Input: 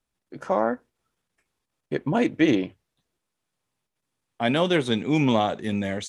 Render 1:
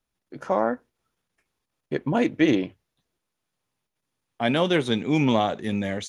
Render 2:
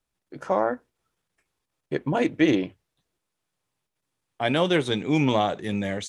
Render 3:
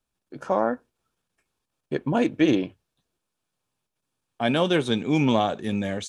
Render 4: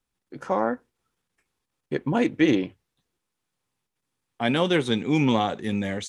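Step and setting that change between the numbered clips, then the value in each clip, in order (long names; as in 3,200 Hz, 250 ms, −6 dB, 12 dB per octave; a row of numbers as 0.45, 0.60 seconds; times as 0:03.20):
notch filter, centre frequency: 8,000, 230, 2,000, 630 Hertz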